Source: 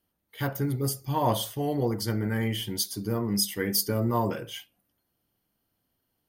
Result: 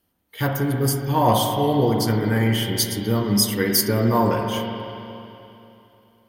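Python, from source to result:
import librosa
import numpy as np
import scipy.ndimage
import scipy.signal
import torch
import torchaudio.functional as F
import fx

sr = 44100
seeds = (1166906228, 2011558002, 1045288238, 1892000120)

y = np.clip(x, -10.0 ** (-14.5 / 20.0), 10.0 ** (-14.5 / 20.0))
y = fx.rev_spring(y, sr, rt60_s=3.0, pass_ms=(44, 48), chirp_ms=80, drr_db=2.5)
y = F.gain(torch.from_numpy(y), 6.5).numpy()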